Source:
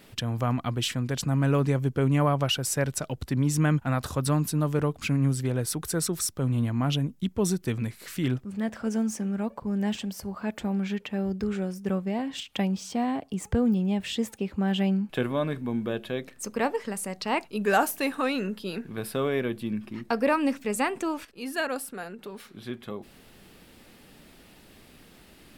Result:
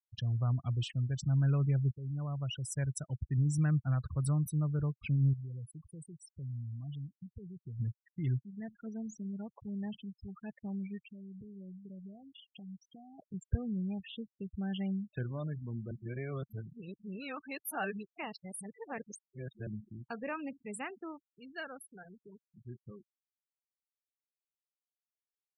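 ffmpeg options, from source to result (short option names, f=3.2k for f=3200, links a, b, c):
-filter_complex "[0:a]asettb=1/sr,asplit=3[a][b][c];[a]atrim=end=5.334[d];[b]atrim=start=5.33:end=7.8,asetpts=PTS-STARTPTS,afade=t=in:d=0.004:c=qsin,afade=t=out:st=2.466:d=0.004:c=qsin,acompressor=threshold=-39dB:ratio=2.5:attack=3.2:release=140:knee=1:detection=peak[e];[c]atrim=start=7.796[f];[d][e]acrossfade=d=0.004:c1=hsin:c2=qsin[g];[g][f]acrossfade=d=0.004:c1=qsin:c2=hsin,asettb=1/sr,asplit=3[h][i][j];[h]atrim=end=11.044[k];[i]atrim=start=11.04:end=13.19,asetpts=PTS-STARTPTS,afade=t=in:d=0.004:c=qsin,afade=t=out:st=2.146:d=0.004:c=qsin,acompressor=threshold=-33dB:ratio=12:attack=3.2:release=140:knee=1:detection=peak[l];[j]atrim=start=13.186[m];[k][l]acrossfade=d=0.004:c1=hsin:c2=qsin[n];[n][m]acrossfade=d=0.004:c1=qsin:c2=hsin,asplit=4[o][p][q][r];[o]atrim=end=1.91,asetpts=PTS-STARTPTS,afade=t=out:st=1.906:d=0.004:c=hsin:silence=0.158489[s];[p]atrim=start=1.91:end=15.912,asetpts=PTS-STARTPTS,afade=t=in:d=1.02:silence=0.158489[t];[q]atrim=start=15.908:end=19.672,asetpts=PTS-STARTPTS,areverse[u];[r]atrim=start=19.668[v];[s][t]concat=n=2:v=0:a=1[w];[w][u]acrossfade=d=0.004:c1=hsin:c2=hsin[x];[x][v]acrossfade=d=0.004:c1=hsin:c2=hsin,afftfilt=real='re*gte(hypot(re,im),0.0447)':imag='im*gte(hypot(re,im),0.0447)':win_size=1024:overlap=0.75,equalizer=f=125:t=o:w=1:g=4,equalizer=f=250:t=o:w=1:g=-12,equalizer=f=500:t=o:w=1:g=-10,equalizer=f=1k:t=o:w=1:g=-11,equalizer=f=2k:t=o:w=1:g=-4,equalizer=f=4k:t=o:w=1:g=-10,equalizer=f=8k:t=o:w=1:g=-4,volume=-2.5dB"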